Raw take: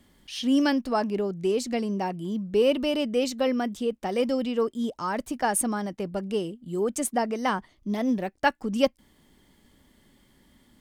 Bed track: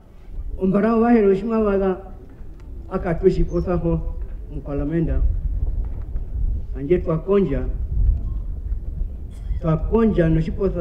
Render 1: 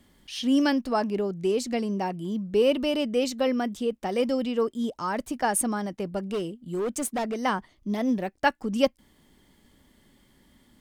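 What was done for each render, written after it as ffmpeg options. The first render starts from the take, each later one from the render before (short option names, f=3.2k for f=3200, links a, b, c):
-filter_complex "[0:a]asettb=1/sr,asplit=3[a][b][c];[a]atrim=end=6.234[d];[b]atrim=start=6.23:end=7.45,asetpts=PTS-STARTPTS,afade=t=in:d=0.004:c=qsin,afade=t=out:st=1.216:d=0.004:c=qsin,asoftclip=type=hard:threshold=-24.5dB[e];[c]atrim=start=7.446[f];[d][e]acrossfade=d=0.004:c1=hsin:c2=qsin[g];[g][f]acrossfade=d=0.004:c1=qsin:c2=hsin"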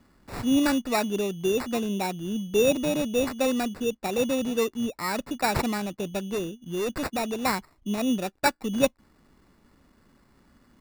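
-af "acrusher=samples=14:mix=1:aa=0.000001"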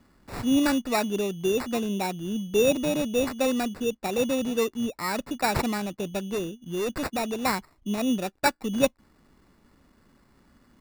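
-af anull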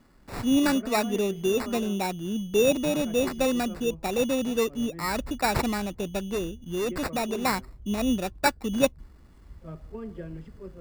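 -filter_complex "[1:a]volume=-21.5dB[a];[0:a][a]amix=inputs=2:normalize=0"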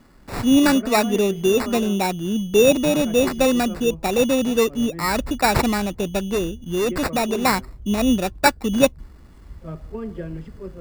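-af "volume=7dB,alimiter=limit=-3dB:level=0:latency=1"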